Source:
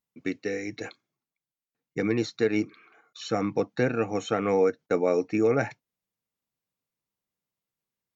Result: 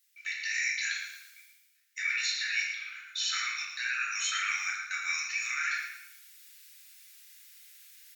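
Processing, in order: steep high-pass 1.5 kHz 48 dB/octave; treble shelf 2.5 kHz +8.5 dB; in parallel at +1 dB: compression, threshold -47 dBFS, peak gain reduction 18.5 dB; on the sum: peak limiter -26 dBFS, peak gain reduction 12 dB; reverse; upward compressor, threshold -44 dBFS; reverse; feedback delay 113 ms, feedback 36%, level -9.5 dB; simulated room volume 290 m³, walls mixed, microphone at 2 m

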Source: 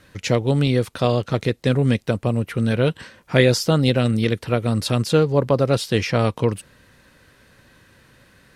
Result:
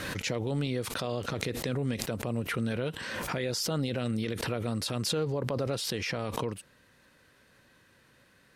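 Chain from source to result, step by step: bass shelf 110 Hz -8.5 dB; peak limiter -13.5 dBFS, peak gain reduction 12 dB; swell ahead of each attack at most 24 dB/s; trim -8.5 dB

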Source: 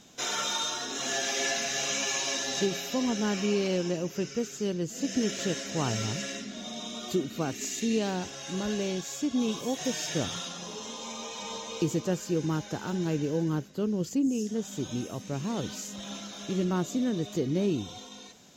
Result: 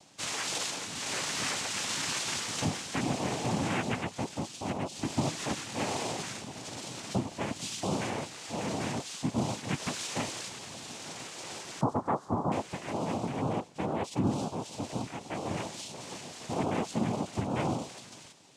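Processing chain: every band turned upside down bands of 500 Hz; noise-vocoded speech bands 4; 11.81–12.52 s: resonant high shelf 1.7 kHz -14 dB, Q 3; trim -2.5 dB

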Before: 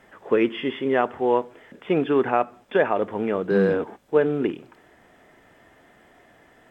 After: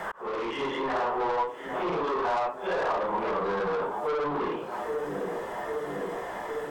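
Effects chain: phase randomisation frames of 200 ms; on a send: filtered feedback delay 804 ms, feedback 65%, low-pass 1.5 kHz, level -21 dB; on the sum: peak limiter -15 dBFS, peak gain reduction 7.5 dB; in parallel at +3 dB: compression, threshold -38 dBFS, peak gain reduction 17.5 dB; on the sum: saturation -26 dBFS, distortion -8 dB; fifteen-band graphic EQ 100 Hz -12 dB, 250 Hz -9 dB, 1 kHz +10 dB, 2.5 kHz -4 dB; slow attack 614 ms; three bands compressed up and down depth 70%

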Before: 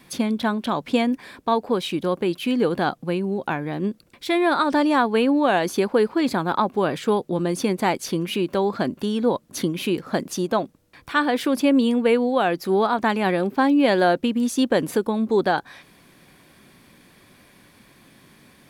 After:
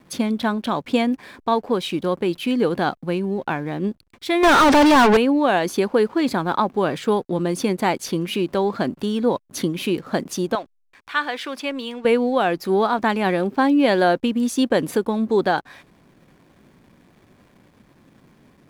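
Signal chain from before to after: 4.43–5.17 s: overdrive pedal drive 36 dB, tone 2.7 kHz, clips at -8 dBFS; 10.55–12.05 s: band-pass filter 2.4 kHz, Q 0.55; hysteresis with a dead band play -45.5 dBFS; trim +1 dB

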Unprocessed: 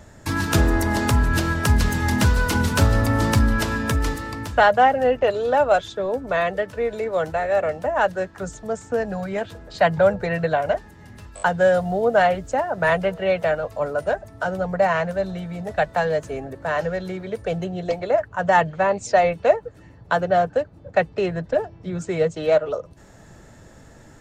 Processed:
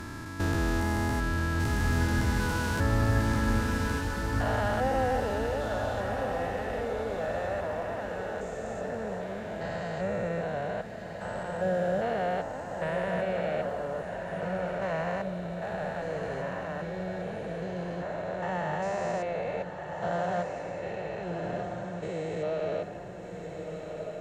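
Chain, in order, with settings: spectrogram pixelated in time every 400 ms; echo that smears into a reverb 1409 ms, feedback 46%, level -5.5 dB; trim -6.5 dB

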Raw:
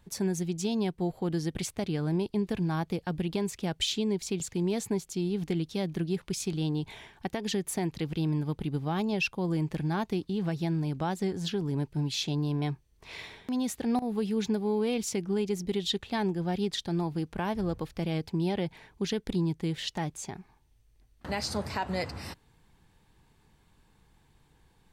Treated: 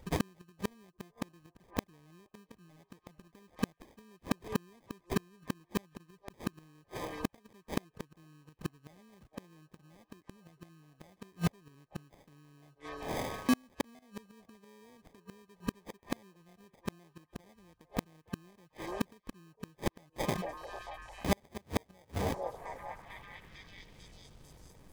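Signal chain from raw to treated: sample-rate reducer 1.4 kHz, jitter 0%; repeats whose band climbs or falls 447 ms, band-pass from 590 Hz, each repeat 0.7 oct, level -10 dB; inverted gate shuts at -24 dBFS, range -37 dB; trim +7 dB

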